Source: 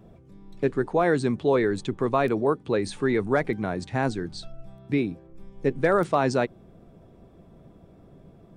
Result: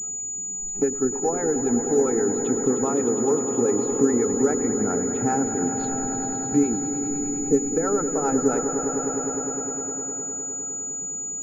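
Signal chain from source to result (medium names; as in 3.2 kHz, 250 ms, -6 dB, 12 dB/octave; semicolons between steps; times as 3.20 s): spectral noise reduction 15 dB; compression 4:1, threshold -39 dBFS, peak gain reduction 18.5 dB; harmonic tremolo 9.9 Hz, depth 70%, crossover 520 Hz; tempo 0.75×; small resonant body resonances 270/430/790/1300 Hz, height 17 dB, ringing for 35 ms; on a send: echo with a slow build-up 102 ms, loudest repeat 5, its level -11.5 dB; on the sum: class-D stage that switches slowly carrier 6.9 kHz; trim +5.5 dB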